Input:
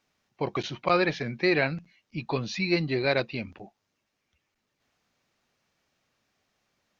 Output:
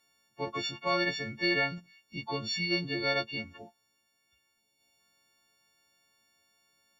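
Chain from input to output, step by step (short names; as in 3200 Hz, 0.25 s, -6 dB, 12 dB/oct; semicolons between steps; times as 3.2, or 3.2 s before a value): frequency quantiser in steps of 4 st; in parallel at -2 dB: compressor, threshold -36 dBFS, peak gain reduction 18 dB; on the sum: spectral gain 4.59–5, 1000–2000 Hz -10 dB; gain -8.5 dB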